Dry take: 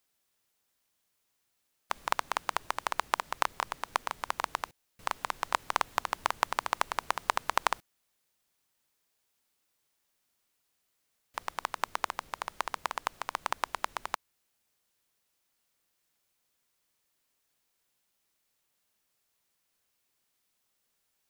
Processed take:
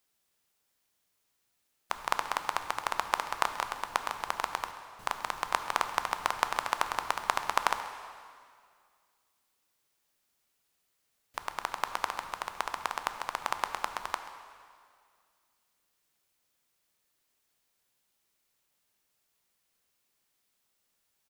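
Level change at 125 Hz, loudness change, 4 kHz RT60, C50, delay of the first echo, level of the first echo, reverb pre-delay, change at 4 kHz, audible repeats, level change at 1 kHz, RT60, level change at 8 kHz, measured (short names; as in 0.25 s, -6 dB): +0.5 dB, +0.5 dB, 1.9 s, 8.5 dB, 0.133 s, -17.0 dB, 5 ms, +0.5 dB, 1, +0.5 dB, 2.1 s, +0.5 dB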